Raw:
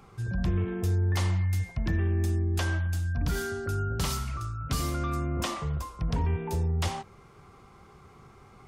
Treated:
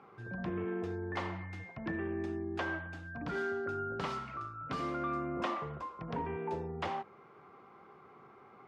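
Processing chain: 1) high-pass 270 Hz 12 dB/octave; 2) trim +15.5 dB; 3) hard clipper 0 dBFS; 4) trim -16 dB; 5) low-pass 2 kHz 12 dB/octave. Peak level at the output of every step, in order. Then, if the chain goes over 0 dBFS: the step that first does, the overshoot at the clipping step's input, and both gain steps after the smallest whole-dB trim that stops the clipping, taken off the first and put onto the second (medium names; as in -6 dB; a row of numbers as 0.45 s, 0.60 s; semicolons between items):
-19.0 dBFS, -3.5 dBFS, -3.5 dBFS, -19.5 dBFS, -22.5 dBFS; nothing clips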